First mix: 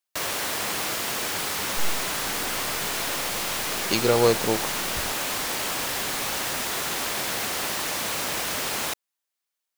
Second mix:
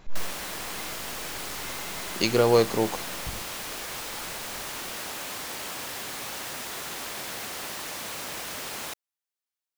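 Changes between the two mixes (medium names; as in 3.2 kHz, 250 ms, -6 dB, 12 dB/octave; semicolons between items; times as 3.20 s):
speech: entry -1.70 s; background -7.5 dB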